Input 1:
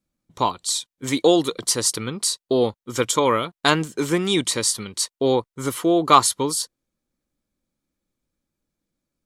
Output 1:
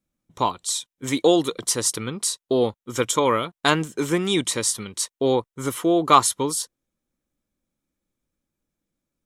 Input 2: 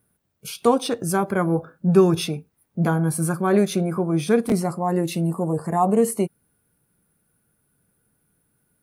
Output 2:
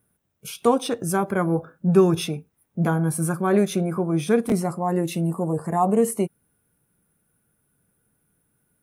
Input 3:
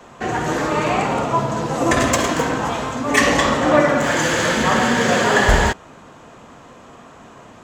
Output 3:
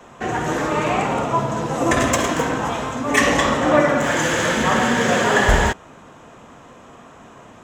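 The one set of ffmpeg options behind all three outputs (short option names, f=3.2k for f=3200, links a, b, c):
-af "equalizer=f=4.5k:t=o:w=0.22:g=-7,volume=-1dB"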